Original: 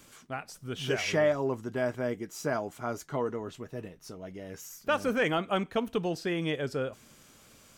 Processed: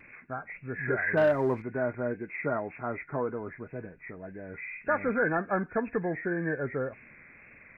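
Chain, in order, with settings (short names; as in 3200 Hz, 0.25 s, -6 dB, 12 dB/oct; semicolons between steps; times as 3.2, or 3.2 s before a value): nonlinear frequency compression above 1400 Hz 4:1; 1.17–1.62 sample leveller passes 1; vibrato 1.9 Hz 41 cents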